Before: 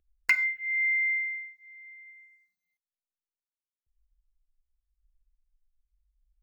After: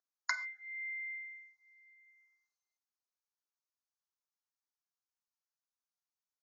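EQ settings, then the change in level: HPF 830 Hz 24 dB/oct; Butterworth band-stop 2600 Hz, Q 0.82; brick-wall FIR low-pass 6900 Hz; +3.0 dB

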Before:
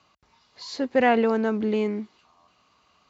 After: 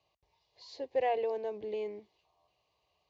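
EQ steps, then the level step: air absorption 120 m; fixed phaser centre 570 Hz, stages 4; -8.0 dB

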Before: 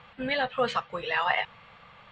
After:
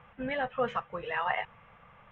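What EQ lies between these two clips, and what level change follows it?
running mean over 10 samples; low shelf 65 Hz +7 dB; -3.0 dB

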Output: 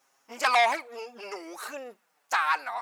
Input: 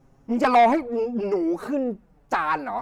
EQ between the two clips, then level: HPF 1100 Hz 12 dB/oct; high shelf 3000 Hz +9.5 dB; 0.0 dB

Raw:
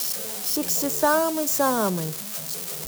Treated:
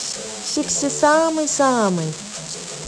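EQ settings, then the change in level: synth low-pass 7700 Hz, resonance Q 3.9; air absorption 110 m; +6.0 dB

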